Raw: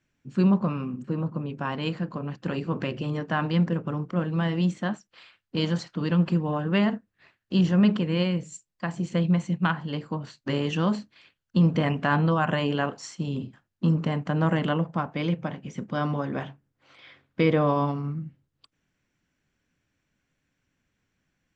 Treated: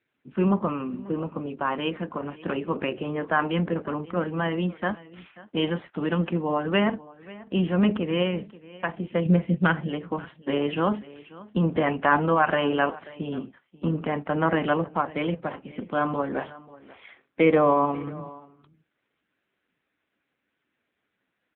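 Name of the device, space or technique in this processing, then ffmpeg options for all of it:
satellite phone: -filter_complex "[0:a]asettb=1/sr,asplit=3[a][b][c];[a]atrim=end=9.254[d];[b]atrim=start=9.25:end=9.88,asetpts=PTS-STARTPTS,afade=t=in:d=0.004:c=qsin,afade=t=out:st=0.626:d=0.004:c=qsin,equalizer=f=125:t=o:w=1:g=12,equalizer=f=500:t=o:w=1:g=8,equalizer=f=1k:t=o:w=1:g=-7,equalizer=f=2k:t=o:w=1:g=3[e];[c]atrim=start=9.876[f];[d][e]acrossfade=d=0.004:c1=hsin:c2=qsin[g];[g][f]acrossfade=d=0.004:c1=qsin:c2=hsin,highpass=300,lowpass=3.2k,aecho=1:1:537:0.1,volume=5.5dB" -ar 8000 -c:a libopencore_amrnb -b:a 6700

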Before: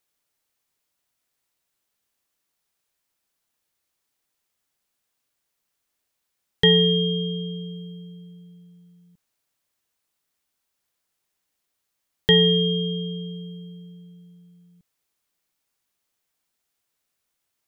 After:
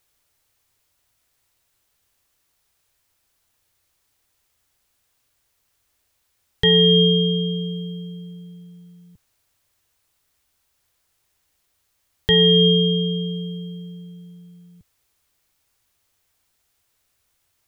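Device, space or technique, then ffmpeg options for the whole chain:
car stereo with a boomy subwoofer: -af "lowshelf=f=130:t=q:w=1.5:g=8,alimiter=limit=-14.5dB:level=0:latency=1:release=156,volume=8.5dB"

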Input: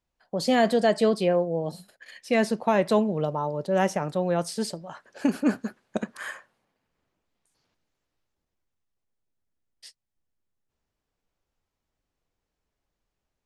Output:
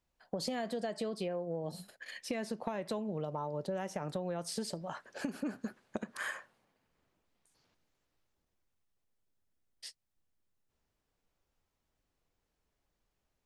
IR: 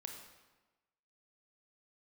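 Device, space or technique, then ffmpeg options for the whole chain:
serial compression, peaks first: -af "acompressor=threshold=-28dB:ratio=6,acompressor=threshold=-35dB:ratio=3"

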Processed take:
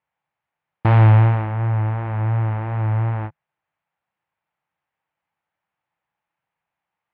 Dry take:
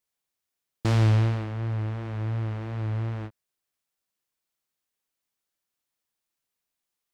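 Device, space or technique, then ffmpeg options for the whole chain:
bass cabinet: -af "highpass=71,equalizer=f=150:t=q:w=4:g=5,equalizer=f=250:t=q:w=4:g=-10,equalizer=f=400:t=q:w=4:g=-9,equalizer=f=850:t=q:w=4:g=8,lowpass=f=2.4k:w=0.5412,lowpass=f=2.4k:w=1.3066,volume=9dB"

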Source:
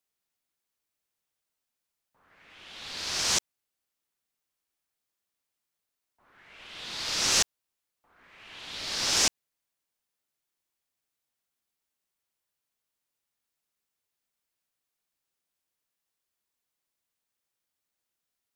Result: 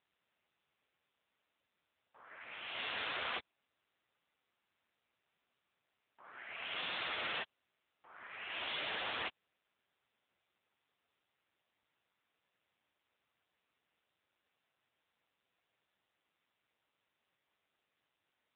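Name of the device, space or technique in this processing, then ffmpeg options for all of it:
voicemail: -af "highpass=340,lowpass=3.2k,acompressor=threshold=-41dB:ratio=12,volume=10.5dB" -ar 8000 -c:a libopencore_amrnb -b:a 6700

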